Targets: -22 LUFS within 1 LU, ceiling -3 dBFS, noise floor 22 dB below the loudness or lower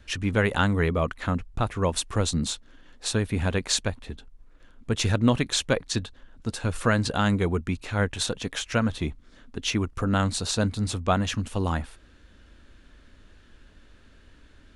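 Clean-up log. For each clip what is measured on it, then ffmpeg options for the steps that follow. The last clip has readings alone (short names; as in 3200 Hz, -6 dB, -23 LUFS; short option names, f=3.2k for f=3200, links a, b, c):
loudness -26.5 LUFS; peak -6.5 dBFS; loudness target -22.0 LUFS
-> -af "volume=4.5dB,alimiter=limit=-3dB:level=0:latency=1"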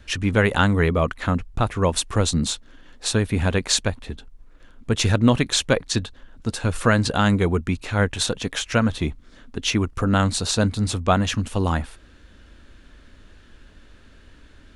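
loudness -22.0 LUFS; peak -3.0 dBFS; noise floor -50 dBFS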